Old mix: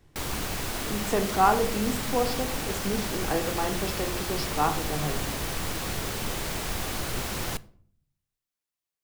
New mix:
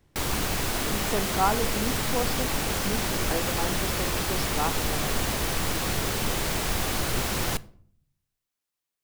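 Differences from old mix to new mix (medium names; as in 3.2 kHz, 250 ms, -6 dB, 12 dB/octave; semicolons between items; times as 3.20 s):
speech: send -11.5 dB; background +4.0 dB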